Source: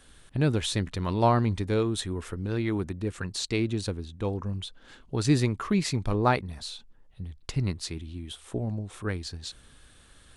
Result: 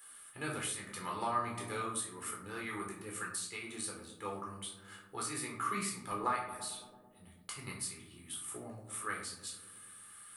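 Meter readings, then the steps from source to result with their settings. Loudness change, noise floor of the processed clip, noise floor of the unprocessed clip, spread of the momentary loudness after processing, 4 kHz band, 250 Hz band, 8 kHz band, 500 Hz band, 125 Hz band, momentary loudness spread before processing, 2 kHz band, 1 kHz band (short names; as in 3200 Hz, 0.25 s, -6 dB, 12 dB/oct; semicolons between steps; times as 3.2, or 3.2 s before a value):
-10.5 dB, -59 dBFS, -56 dBFS, 12 LU, -10.5 dB, -17.0 dB, +0.5 dB, -14.0 dB, -22.0 dB, 14 LU, -5.0 dB, -6.0 dB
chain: differentiator; small resonant body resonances 1200/2900 Hz, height 10 dB, ringing for 25 ms; on a send: darkening echo 0.11 s, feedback 81%, low-pass 980 Hz, level -13 dB; on the sum: compressor 6:1, threshold -41 dBFS, peak gain reduction 10.5 dB; band shelf 4400 Hz -12 dB; shoebox room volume 520 m³, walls furnished, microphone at 4.1 m; gain +5.5 dB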